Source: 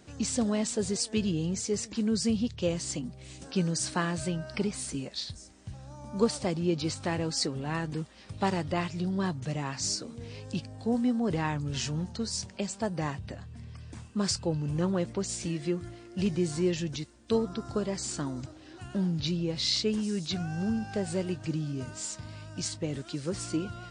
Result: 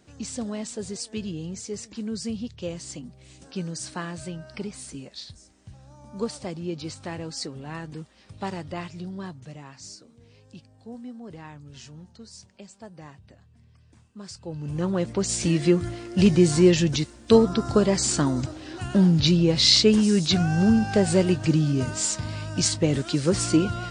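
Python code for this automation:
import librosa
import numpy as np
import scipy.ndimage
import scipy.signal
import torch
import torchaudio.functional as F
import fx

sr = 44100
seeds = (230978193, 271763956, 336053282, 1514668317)

y = fx.gain(x, sr, db=fx.line((8.94, -3.5), (9.95, -12.0), (14.3, -12.0), (14.67, 0.0), (15.55, 11.0)))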